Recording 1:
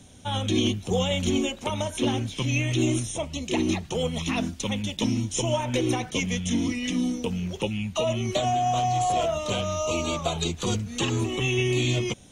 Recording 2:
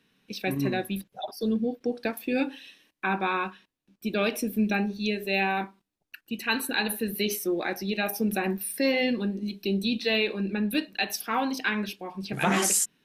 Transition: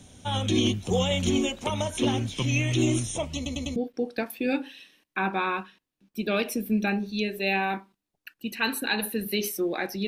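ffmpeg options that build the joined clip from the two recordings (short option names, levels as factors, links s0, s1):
-filter_complex "[0:a]apad=whole_dur=10.07,atrim=end=10.07,asplit=4[s0][s1][s2][s3];[s0]atrim=end=3.462[s4];[s1]atrim=start=3.358:end=3.462[s5];[s2]atrim=start=3.358:end=3.462[s6];[s3]atrim=start=3.358:end=3.462[s7];[1:a]atrim=start=1.628:end=7.94[s8];[s4][s5]acrossfade=d=0.004:c1=hsin:c2=hsin[s9];[s9][s6]acrossfade=d=0.004:c1=hsin:c2=hsin[s10];[s10][s7]acrossfade=d=0.004:c1=hsin:c2=hsin[s11];[s11][s8]acrossfade=d=0.004:c1=hsin:c2=hsin"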